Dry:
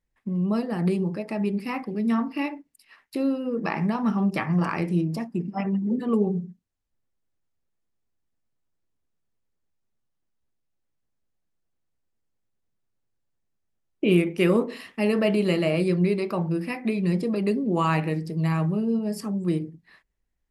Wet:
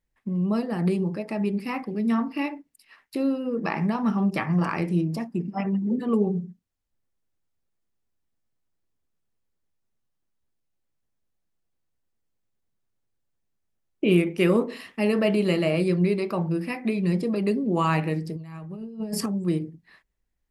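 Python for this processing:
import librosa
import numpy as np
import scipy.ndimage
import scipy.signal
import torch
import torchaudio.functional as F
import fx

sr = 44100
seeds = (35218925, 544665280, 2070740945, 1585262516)

y = fx.over_compress(x, sr, threshold_db=-31.0, ratio=-0.5, at=(18.36, 19.26))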